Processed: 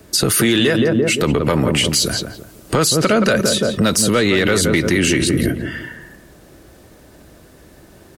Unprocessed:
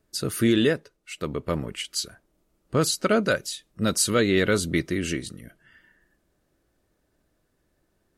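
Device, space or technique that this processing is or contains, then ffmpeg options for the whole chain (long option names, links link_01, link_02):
mastering chain: -filter_complex "[0:a]asettb=1/sr,asplit=3[link_01][link_02][link_03];[link_01]atrim=end=2.004[link_04];[link_02]atrim=start=2:end=2.77,asetpts=PTS-STARTPTS,afade=type=in:duration=0.004:curve=qsin,afade=type=out:start_time=0.766:duration=0.004:curve=qsin,highshelf=frequency=3800:gain=8[link_05];[link_03]atrim=start=2.766[link_06];[link_04][link_05]acrossfade=duration=0.004:curve1=hsin:curve2=qsin[link_07];[link_07][link_06]acrossfade=duration=0.004:curve1=qsin:curve2=hsin,highpass=48,equalizer=frequency=1400:width_type=o:width=0.77:gain=-2,asplit=2[link_08][link_09];[link_09]adelay=171,lowpass=frequency=1200:poles=1,volume=-9dB,asplit=2[link_10][link_11];[link_11]adelay=171,lowpass=frequency=1200:poles=1,volume=0.38,asplit=2[link_12][link_13];[link_13]adelay=171,lowpass=frequency=1200:poles=1,volume=0.38,asplit=2[link_14][link_15];[link_15]adelay=171,lowpass=frequency=1200:poles=1,volume=0.38[link_16];[link_08][link_10][link_12][link_14][link_16]amix=inputs=5:normalize=0,acrossover=split=160|700[link_17][link_18][link_19];[link_17]acompressor=threshold=-40dB:ratio=4[link_20];[link_18]acompressor=threshold=-30dB:ratio=4[link_21];[link_19]acompressor=threshold=-29dB:ratio=4[link_22];[link_20][link_21][link_22]amix=inputs=3:normalize=0,acompressor=threshold=-37dB:ratio=1.5,asoftclip=type=tanh:threshold=-22dB,asoftclip=type=hard:threshold=-25.5dB,alimiter=level_in=33dB:limit=-1dB:release=50:level=0:latency=1,volume=-6.5dB"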